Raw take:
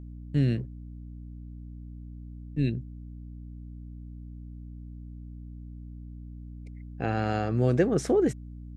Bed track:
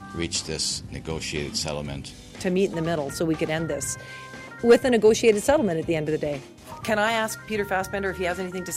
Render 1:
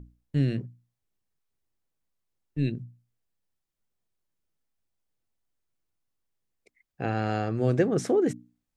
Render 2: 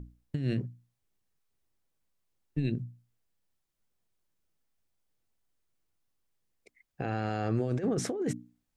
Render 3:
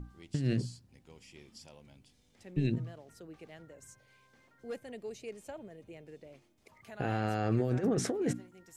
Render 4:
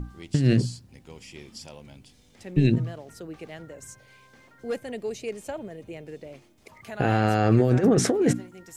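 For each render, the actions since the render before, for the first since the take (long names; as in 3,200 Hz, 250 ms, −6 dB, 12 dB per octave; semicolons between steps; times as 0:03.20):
mains-hum notches 60/120/180/240/300 Hz
compressor whose output falls as the input rises −26 dBFS, ratio −0.5; brickwall limiter −21 dBFS, peak gain reduction 8.5 dB
mix in bed track −25.5 dB
level +10.5 dB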